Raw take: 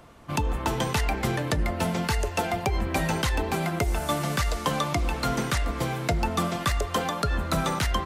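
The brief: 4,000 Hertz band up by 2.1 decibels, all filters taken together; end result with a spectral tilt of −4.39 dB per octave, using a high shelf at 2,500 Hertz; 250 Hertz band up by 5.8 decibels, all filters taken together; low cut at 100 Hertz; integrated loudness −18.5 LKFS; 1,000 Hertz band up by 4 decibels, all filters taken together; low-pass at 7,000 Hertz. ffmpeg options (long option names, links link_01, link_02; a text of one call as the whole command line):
ffmpeg -i in.wav -af "highpass=100,lowpass=7000,equalizer=frequency=250:width_type=o:gain=8,equalizer=frequency=1000:width_type=o:gain=5,highshelf=frequency=2500:gain=-4.5,equalizer=frequency=4000:width_type=o:gain=6.5,volume=6.5dB" out.wav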